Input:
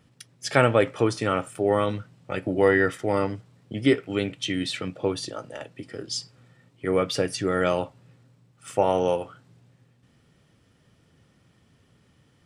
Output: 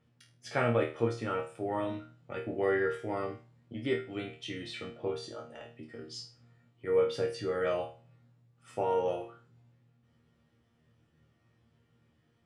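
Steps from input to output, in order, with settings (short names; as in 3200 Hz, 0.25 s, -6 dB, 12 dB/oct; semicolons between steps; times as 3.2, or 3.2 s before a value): LPF 2800 Hz 6 dB/oct; resonator bank D#2 fifth, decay 0.35 s; gain +3 dB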